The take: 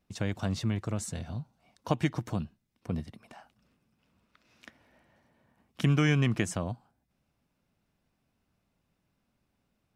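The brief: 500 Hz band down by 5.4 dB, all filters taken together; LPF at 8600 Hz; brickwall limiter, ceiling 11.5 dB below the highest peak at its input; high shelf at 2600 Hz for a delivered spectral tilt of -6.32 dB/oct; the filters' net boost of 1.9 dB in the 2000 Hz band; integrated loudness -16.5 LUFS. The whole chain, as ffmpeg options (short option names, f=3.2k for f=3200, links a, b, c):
-af "lowpass=8.6k,equalizer=f=500:t=o:g=-7,equalizer=f=2k:t=o:g=5.5,highshelf=f=2.6k:g=-6.5,volume=20.5dB,alimiter=limit=-3.5dB:level=0:latency=1"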